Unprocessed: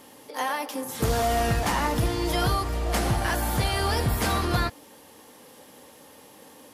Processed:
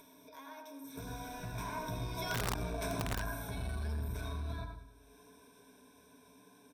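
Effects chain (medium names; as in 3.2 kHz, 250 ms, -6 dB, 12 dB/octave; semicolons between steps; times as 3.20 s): Doppler pass-by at 2.60 s, 17 m/s, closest 3.9 m; on a send at -4.5 dB: bass shelf 360 Hz -5.5 dB + reverberation RT60 0.40 s, pre-delay 79 ms; on the sum: compression 1.5:1, threshold -38 dBFS, peak gain reduction 7 dB; feedback delay 100 ms, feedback 40%, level -13 dB; upward compressor, threshold -46 dBFS; rippled EQ curve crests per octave 1.6, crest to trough 18 dB; integer overflow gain 20.5 dB; transformer saturation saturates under 130 Hz; trim -5.5 dB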